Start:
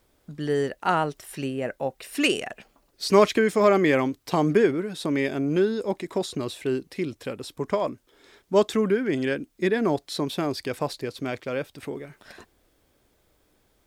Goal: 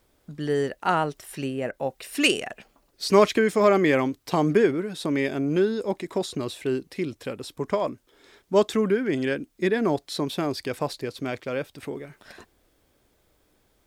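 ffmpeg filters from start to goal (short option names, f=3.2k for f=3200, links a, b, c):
-filter_complex "[0:a]asettb=1/sr,asplit=3[a][b][c];[a]atrim=end=1.714[d];[b]atrim=start=1.71:end=2.31,asetpts=PTS-STARTPTS,afade=t=in:d=0.004:c=qsin,afade=t=out:st=0.596:d=0.004:c=qsin,adynamicequalizer=threshold=0.02:dfrequency=2400:dqfactor=0.7:tfrequency=2400:tqfactor=0.7:attack=5:release=100:ratio=0.375:range=3:mode=boostabove:tftype=highshelf[e];[c]atrim=start=2.306[f];[d][e]acrossfade=d=0.004:c1=hsin:c2=qsin[g];[g][f]acrossfade=d=0.004:c1=qsin:c2=hsin"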